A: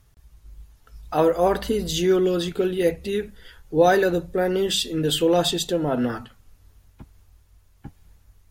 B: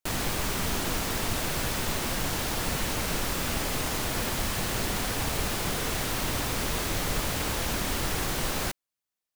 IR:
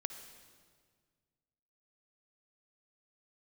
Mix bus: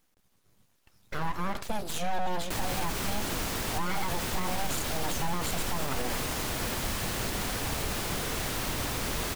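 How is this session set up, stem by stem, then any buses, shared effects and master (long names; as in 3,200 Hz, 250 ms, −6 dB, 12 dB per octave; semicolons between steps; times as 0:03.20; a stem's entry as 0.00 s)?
−4.5 dB, 0.00 s, no send, high-pass filter 150 Hz 12 dB per octave; full-wave rectification
−2.5 dB, 2.45 s, no send, no processing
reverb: not used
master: brickwall limiter −20 dBFS, peak gain reduction 10 dB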